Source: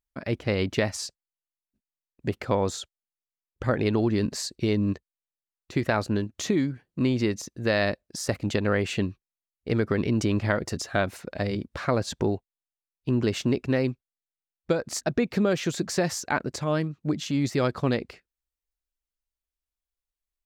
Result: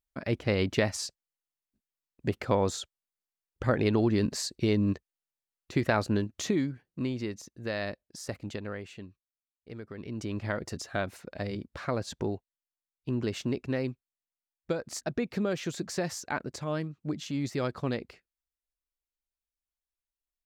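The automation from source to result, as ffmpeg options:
ffmpeg -i in.wav -af "volume=10dB,afade=type=out:start_time=6.19:duration=1.01:silence=0.398107,afade=type=out:start_time=8.36:duration=0.58:silence=0.375837,afade=type=in:start_time=9.94:duration=0.67:silence=0.266073" out.wav

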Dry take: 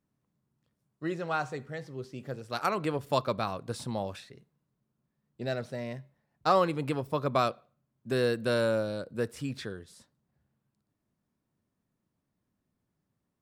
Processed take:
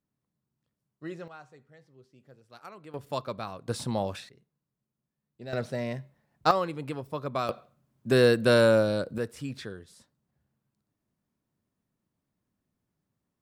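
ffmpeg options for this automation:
ffmpeg -i in.wav -af "asetnsamples=nb_out_samples=441:pad=0,asendcmd='1.28 volume volume -17dB;2.94 volume volume -5dB;3.68 volume volume 4dB;4.29 volume volume -7dB;5.53 volume volume 4.5dB;6.51 volume volume -4dB;7.49 volume volume 7dB;9.18 volume volume -1dB',volume=-5.5dB" out.wav

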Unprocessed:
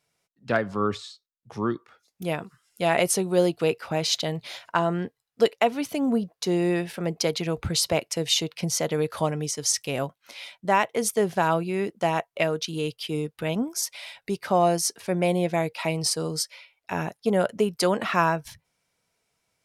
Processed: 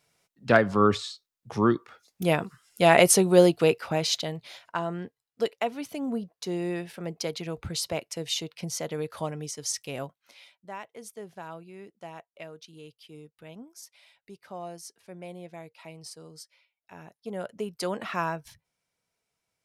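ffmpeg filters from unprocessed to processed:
ffmpeg -i in.wav -af "volume=15.5dB,afade=type=out:start_time=3.28:duration=1.15:silence=0.266073,afade=type=out:start_time=10.01:duration=0.65:silence=0.266073,afade=type=in:start_time=17.01:duration=0.95:silence=0.281838" out.wav

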